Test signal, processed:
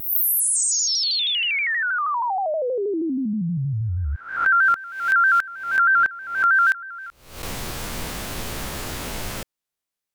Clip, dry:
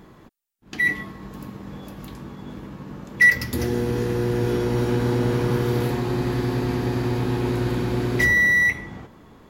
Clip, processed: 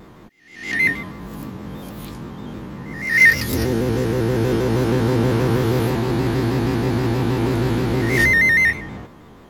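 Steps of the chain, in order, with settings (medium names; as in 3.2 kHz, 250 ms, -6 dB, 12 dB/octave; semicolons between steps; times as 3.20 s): reverse spectral sustain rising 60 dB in 0.61 s; vibrato with a chosen wave square 6.3 Hz, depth 100 cents; trim +2.5 dB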